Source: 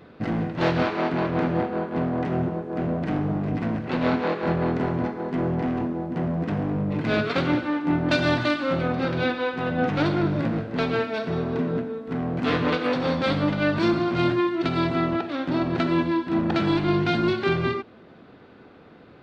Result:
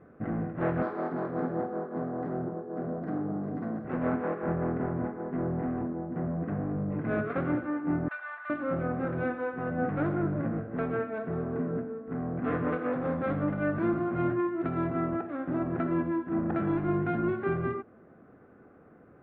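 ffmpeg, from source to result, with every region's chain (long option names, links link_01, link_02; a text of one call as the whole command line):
ffmpeg -i in.wav -filter_complex "[0:a]asettb=1/sr,asplit=3[link_01][link_02][link_03];[link_01]atrim=end=0.824[link_04];[link_02]atrim=start=0.82:end=3.85,asetpts=PTS-STARTPTS,afade=type=in:duration=0.004:curve=qsin,afade=type=out:start_time=3.026:duration=0.004:curve=qsin,highpass=170,highshelf=frequency=3800:width_type=q:width=3:gain=13.5,asplit=2[link_05][link_06];[link_06]adelay=50,volume=-11dB[link_07];[link_05][link_07]amix=inputs=2:normalize=0,atrim=end_sample=133623[link_08];[link_03]atrim=start=3.846[link_09];[link_04][link_08]acrossfade=duration=0.004:curve1=hsin:curve2=qsin[link_10];[link_10][link_09]acrossfade=duration=0.004:curve1=qsin:curve2=hsin,asettb=1/sr,asplit=3[link_11][link_12][link_13];[link_11]atrim=end=8.084[link_14];[link_12]atrim=start=8.08:end=8.5,asetpts=PTS-STARTPTS,afade=type=in:duration=0.004:curve=qsin,afade=type=out:start_time=0.416:duration=0.004:curve=qsin,highpass=frequency=1100:width=0.5412,highpass=frequency=1100:width=1.3066,highshelf=frequency=2900:gain=-11[link_15];[link_13]atrim=start=8.496[link_16];[link_14][link_15]acrossfade=duration=0.004:curve1=hsin:curve2=qsin[link_17];[link_17][link_16]acrossfade=duration=0.004:curve1=qsin:curve2=hsin,lowpass=frequency=1700:width=0.5412,lowpass=frequency=1700:width=1.3066,bandreject=frequency=930:width=7,volume=-6dB" out.wav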